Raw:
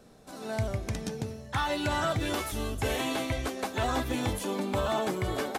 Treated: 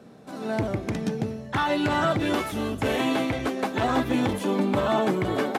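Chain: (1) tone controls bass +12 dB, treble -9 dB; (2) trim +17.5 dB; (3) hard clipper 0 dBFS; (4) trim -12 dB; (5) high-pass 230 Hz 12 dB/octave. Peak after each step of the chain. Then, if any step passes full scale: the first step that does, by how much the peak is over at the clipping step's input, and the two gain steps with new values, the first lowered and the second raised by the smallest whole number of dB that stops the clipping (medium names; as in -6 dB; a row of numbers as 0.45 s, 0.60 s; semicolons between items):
-10.0 dBFS, +7.5 dBFS, 0.0 dBFS, -12.0 dBFS, -12.0 dBFS; step 2, 7.5 dB; step 2 +9.5 dB, step 4 -4 dB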